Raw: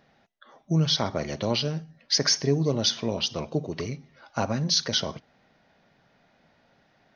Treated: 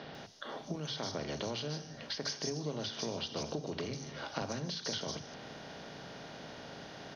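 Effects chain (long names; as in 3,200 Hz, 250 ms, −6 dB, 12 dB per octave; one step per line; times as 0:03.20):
compressor on every frequency bin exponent 0.6
downward compressor 10 to 1, threshold −30 dBFS, peak gain reduction 14.5 dB
three-band delay without the direct sound mids, lows, highs 40/150 ms, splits 150/4,700 Hz
level −2.5 dB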